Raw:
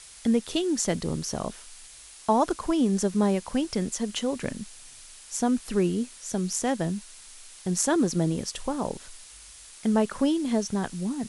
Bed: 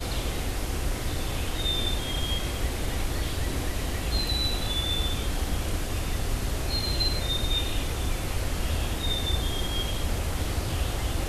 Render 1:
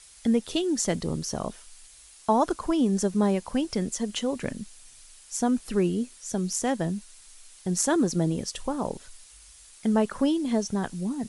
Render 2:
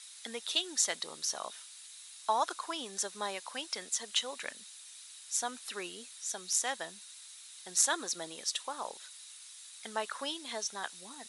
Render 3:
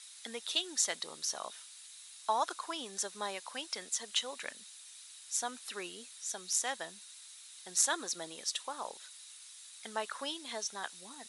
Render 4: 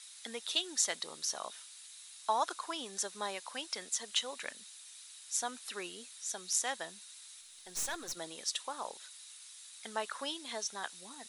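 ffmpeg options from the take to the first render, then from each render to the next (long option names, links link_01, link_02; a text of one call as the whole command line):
ffmpeg -i in.wav -af "afftdn=noise_reduction=6:noise_floor=-48" out.wav
ffmpeg -i in.wav -af "highpass=1100,equalizer=frequency=3800:width=7.2:gain=10" out.wav
ffmpeg -i in.wav -af "volume=-1.5dB" out.wav
ffmpeg -i in.wav -filter_complex "[0:a]asettb=1/sr,asplit=3[link_01][link_02][link_03];[link_01]atrim=end=7.414[link_04];[link_02]atrim=start=7.41:end=8.17,asetpts=PTS-STARTPTS,afade=type=in:duration=0.004:curve=qsin,afade=type=out:start_time=0.756:duration=0.004:curve=qsin,aeval=exprs='(tanh(44.7*val(0)+0.55)-tanh(0.55))/44.7':channel_layout=same[link_05];[link_03]atrim=start=8.166[link_06];[link_04][link_05]acrossfade=duration=0.004:curve1=hsin:curve2=qsin[link_07];[link_07][link_06]acrossfade=duration=0.004:curve1=qsin:curve2=hsin" out.wav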